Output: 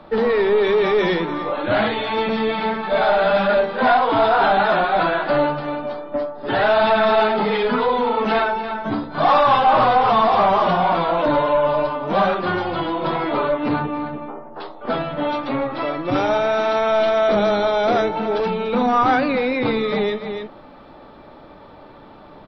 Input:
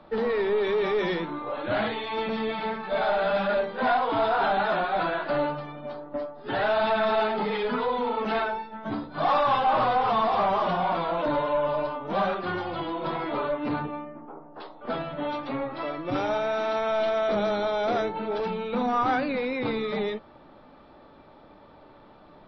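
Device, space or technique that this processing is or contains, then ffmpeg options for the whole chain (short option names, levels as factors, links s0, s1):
ducked delay: -filter_complex "[0:a]asplit=3[s0][s1][s2];[s1]adelay=290,volume=0.447[s3];[s2]apad=whole_len=1003894[s4];[s3][s4]sidechaincompress=threshold=0.0158:ratio=8:attack=10:release=185[s5];[s0][s5]amix=inputs=2:normalize=0,volume=2.51"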